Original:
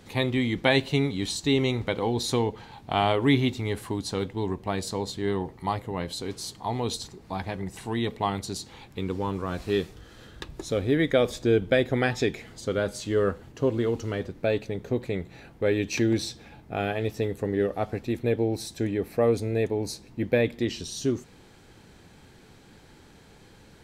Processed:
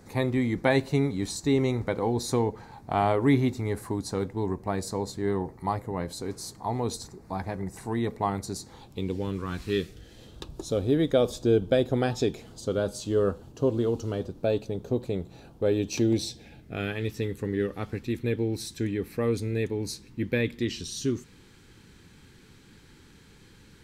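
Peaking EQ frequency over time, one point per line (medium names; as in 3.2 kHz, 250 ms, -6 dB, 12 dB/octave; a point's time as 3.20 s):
peaking EQ -14.5 dB 0.71 oct
8.65 s 3.1 kHz
9.54 s 560 Hz
10.47 s 2 kHz
15.93 s 2 kHz
16.96 s 670 Hz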